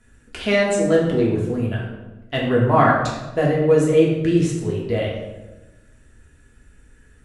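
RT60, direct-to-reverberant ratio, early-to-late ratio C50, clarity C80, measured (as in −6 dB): 1.1 s, −4.0 dB, 2.5 dB, 5.5 dB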